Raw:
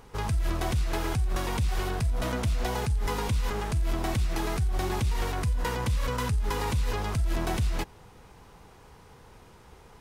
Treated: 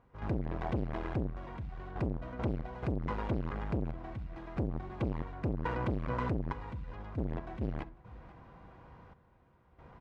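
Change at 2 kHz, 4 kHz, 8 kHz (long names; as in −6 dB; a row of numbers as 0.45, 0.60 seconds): −10.5 dB, −20.0 dB, below −30 dB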